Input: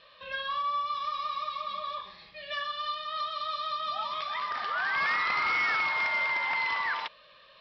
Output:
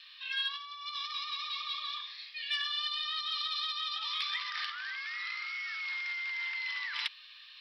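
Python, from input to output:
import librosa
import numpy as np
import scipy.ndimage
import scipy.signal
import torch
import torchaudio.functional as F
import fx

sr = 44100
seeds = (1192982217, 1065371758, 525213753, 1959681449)

y = fx.over_compress(x, sr, threshold_db=-34.0, ratio=-1.0)
y = scipy.signal.sosfilt(scipy.signal.bessel(4, 2700.0, 'highpass', norm='mag', fs=sr, output='sos'), y)
y = 10.0 ** (-24.0 / 20.0) * np.tanh(y / 10.0 ** (-24.0 / 20.0))
y = F.gain(torch.from_numpy(y), 6.0).numpy()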